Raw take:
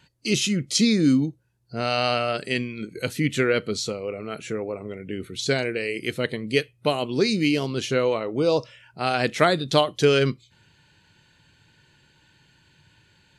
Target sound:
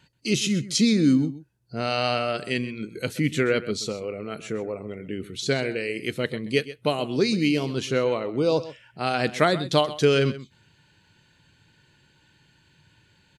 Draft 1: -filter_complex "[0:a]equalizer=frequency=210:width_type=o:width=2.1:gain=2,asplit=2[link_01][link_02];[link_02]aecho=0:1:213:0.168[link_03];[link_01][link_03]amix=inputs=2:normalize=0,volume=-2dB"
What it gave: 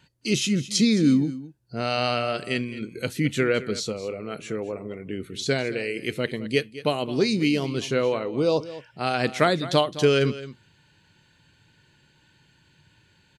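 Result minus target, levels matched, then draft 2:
echo 84 ms late
-filter_complex "[0:a]equalizer=frequency=210:width_type=o:width=2.1:gain=2,asplit=2[link_01][link_02];[link_02]aecho=0:1:129:0.168[link_03];[link_01][link_03]amix=inputs=2:normalize=0,volume=-2dB"

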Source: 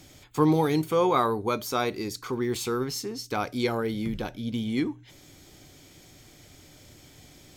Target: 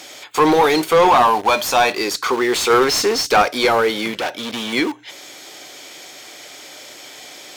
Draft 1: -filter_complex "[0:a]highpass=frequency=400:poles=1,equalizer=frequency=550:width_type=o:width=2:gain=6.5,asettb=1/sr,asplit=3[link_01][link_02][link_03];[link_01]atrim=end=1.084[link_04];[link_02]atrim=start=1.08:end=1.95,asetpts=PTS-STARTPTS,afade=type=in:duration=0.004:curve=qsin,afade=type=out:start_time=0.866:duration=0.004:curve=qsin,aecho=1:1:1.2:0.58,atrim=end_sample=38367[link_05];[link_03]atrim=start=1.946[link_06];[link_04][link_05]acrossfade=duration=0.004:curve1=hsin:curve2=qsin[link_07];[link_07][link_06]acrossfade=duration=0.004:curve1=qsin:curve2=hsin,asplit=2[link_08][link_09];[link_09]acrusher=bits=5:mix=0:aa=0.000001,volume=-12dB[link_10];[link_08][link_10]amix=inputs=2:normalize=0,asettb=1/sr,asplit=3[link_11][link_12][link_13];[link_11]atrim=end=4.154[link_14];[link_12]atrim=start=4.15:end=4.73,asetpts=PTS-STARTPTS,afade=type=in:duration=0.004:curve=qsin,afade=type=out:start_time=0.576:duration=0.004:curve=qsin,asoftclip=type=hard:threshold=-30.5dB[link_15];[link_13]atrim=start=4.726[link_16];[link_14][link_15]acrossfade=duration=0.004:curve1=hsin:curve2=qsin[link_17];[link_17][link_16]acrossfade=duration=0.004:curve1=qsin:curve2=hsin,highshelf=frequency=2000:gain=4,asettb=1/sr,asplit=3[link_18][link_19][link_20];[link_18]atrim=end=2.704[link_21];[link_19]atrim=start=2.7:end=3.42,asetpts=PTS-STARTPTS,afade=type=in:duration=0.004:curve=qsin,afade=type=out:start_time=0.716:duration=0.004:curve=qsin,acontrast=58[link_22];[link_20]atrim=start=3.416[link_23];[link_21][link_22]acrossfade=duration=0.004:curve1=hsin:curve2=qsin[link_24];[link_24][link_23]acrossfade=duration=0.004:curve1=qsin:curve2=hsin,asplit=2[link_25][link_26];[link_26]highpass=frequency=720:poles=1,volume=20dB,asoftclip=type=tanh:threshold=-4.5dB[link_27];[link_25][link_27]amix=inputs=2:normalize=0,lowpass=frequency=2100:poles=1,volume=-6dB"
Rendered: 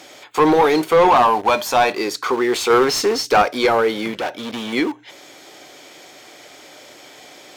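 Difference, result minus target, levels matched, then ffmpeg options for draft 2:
4,000 Hz band −3.0 dB
-filter_complex "[0:a]highpass=frequency=400:poles=1,equalizer=frequency=550:width_type=o:width=2:gain=6.5,asettb=1/sr,asplit=3[link_01][link_02][link_03];[link_01]atrim=end=1.084[link_04];[link_02]atrim=start=1.08:end=1.95,asetpts=PTS-STARTPTS,afade=type=in:duration=0.004:curve=qsin,afade=type=out:start_time=0.866:duration=0.004:curve=qsin,aecho=1:1:1.2:0.58,atrim=end_sample=38367[link_05];[link_03]atrim=start=1.946[link_06];[link_04][link_05]acrossfade=duration=0.004:curve1=hsin:curve2=qsin[link_07];[link_07][link_06]acrossfade=duration=0.004:curve1=qsin:curve2=hsin,asplit=2[link_08][link_09];[link_09]acrusher=bits=5:mix=0:aa=0.000001,volume=-12dB[link_10];[link_08][link_10]amix=inputs=2:normalize=0,asettb=1/sr,asplit=3[link_11][link_12][link_13];[link_11]atrim=end=4.154[link_14];[link_12]atrim=start=4.15:end=4.73,asetpts=PTS-STARTPTS,afade=type=in:duration=0.004:curve=qsin,afade=type=out:start_time=0.576:duration=0.004:curve=qsin,asoftclip=type=hard:threshold=-30.5dB[link_15];[link_13]atrim=start=4.726[link_16];[link_14][link_15]acrossfade=duration=0.004:curve1=hsin:curve2=qsin[link_17];[link_17][link_16]acrossfade=duration=0.004:curve1=qsin:curve2=hsin,highshelf=frequency=2000:gain=12,asettb=1/sr,asplit=3[link_18][link_19][link_20];[link_18]atrim=end=2.704[link_21];[link_19]atrim=start=2.7:end=3.42,asetpts=PTS-STARTPTS,afade=type=in:duration=0.004:curve=qsin,afade=type=out:start_time=0.716:duration=0.004:curve=qsin,acontrast=58[link_22];[link_20]atrim=start=3.416[link_23];[link_21][link_22]acrossfade=duration=0.004:curve1=hsin:curve2=qsin[link_24];[link_24][link_23]acrossfade=duration=0.004:curve1=qsin:curve2=hsin,asplit=2[link_25][link_26];[link_26]highpass=frequency=720:poles=1,volume=20dB,asoftclip=type=tanh:threshold=-4.5dB[link_27];[link_25][link_27]amix=inputs=2:normalize=0,lowpass=frequency=2100:poles=1,volume=-6dB"

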